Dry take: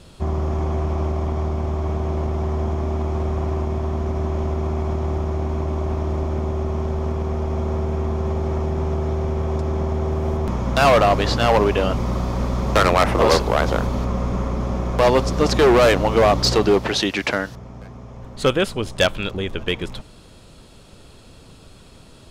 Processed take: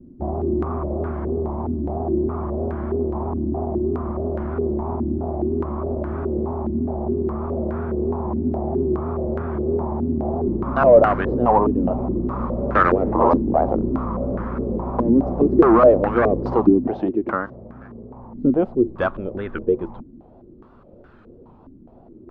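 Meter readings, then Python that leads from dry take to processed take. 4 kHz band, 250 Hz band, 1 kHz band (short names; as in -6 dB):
under -25 dB, +4.5 dB, -0.5 dB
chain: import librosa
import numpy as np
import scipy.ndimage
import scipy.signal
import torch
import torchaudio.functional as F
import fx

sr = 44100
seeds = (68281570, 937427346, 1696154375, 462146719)

y = fx.small_body(x, sr, hz=(240.0, 340.0), ring_ms=85, db=10)
y = fx.vibrato(y, sr, rate_hz=3.1, depth_cents=100.0)
y = fx.filter_held_lowpass(y, sr, hz=4.8, low_hz=280.0, high_hz=1500.0)
y = y * 10.0 ** (-6.0 / 20.0)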